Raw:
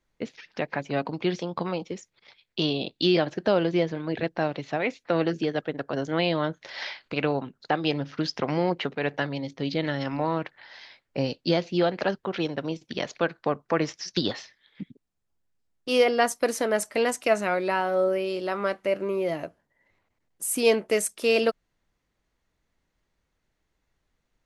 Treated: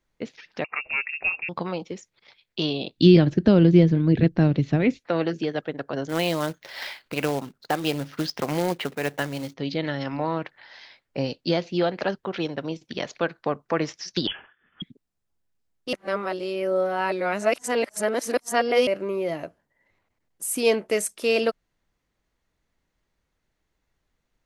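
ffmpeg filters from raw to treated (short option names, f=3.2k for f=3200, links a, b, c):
-filter_complex "[0:a]asettb=1/sr,asplit=3[a][b][c];[a]atrim=end=0.644[d];[b]atrim=start=0.64:end=1.49,asetpts=PTS-STARTPTS,afade=t=in:d=0.004:c=qsin,afade=t=out:st=0.846:d=0.004:c=qsin,lowpass=f=2.5k:t=q:w=0.5098,lowpass=f=2.5k:t=q:w=0.6013,lowpass=f=2.5k:t=q:w=0.9,lowpass=f=2.5k:t=q:w=2.563,afreqshift=-2900[e];[c]atrim=start=1.486[f];[d][e]acrossfade=d=0.004:c1=hsin:c2=qsin[g];[g][f]acrossfade=d=0.004:c1=qsin:c2=hsin,asplit=3[h][i][j];[h]afade=t=out:st=2.97:d=0.02[k];[i]asubboost=boost=11:cutoff=240,afade=t=in:st=2.97:d=0.02,afade=t=out:st=4.98:d=0.02[l];[j]afade=t=in:st=4.98:d=0.02[m];[k][l][m]amix=inputs=3:normalize=0,asettb=1/sr,asplit=3[n][o][p];[n]atrim=end=6.094[q];[o]atrim=start=6.09:end=9.54,asetpts=PTS-STARTPTS,afade=t=in:d=0.004:c=qsin,afade=t=out:st=3.446:d=0.004:c=qsin,acrusher=bits=3:mode=log:mix=0:aa=0.000001[r];[p]atrim=start=9.536[s];[q][r]acrossfade=d=0.004:c1=hsin:c2=qsin[t];[t][s]acrossfade=d=0.004:c1=qsin:c2=hsin,asettb=1/sr,asplit=3[u][v][w];[u]atrim=end=14.274[x];[v]atrim=start=14.27:end=14.82,asetpts=PTS-STARTPTS,afade=t=in:d=0.004:c=qsin,afade=t=out:st=0.546:d=0.004:c=qsin,lowpass=f=3k:t=q:w=0.5098,lowpass=f=3k:t=q:w=0.6013,lowpass=f=3k:t=q:w=0.9,lowpass=f=3k:t=q:w=2.563,afreqshift=-3500[y];[w]atrim=start=14.816[z];[x][y]acrossfade=d=0.004:c1=hsin:c2=qsin[aa];[aa][z]acrossfade=d=0.004:c1=qsin:c2=hsin,asplit=3[ab][ac][ad];[ab]atrim=end=15.932[ae];[ac]atrim=start=15.928:end=18.872,asetpts=PTS-STARTPTS,areverse[af];[ad]atrim=start=18.868[ag];[ae][af]acrossfade=d=0.004:c1=hsin:c2=hsin[ah];[ah][ag]acrossfade=d=0.004:c1=hsin:c2=hsin"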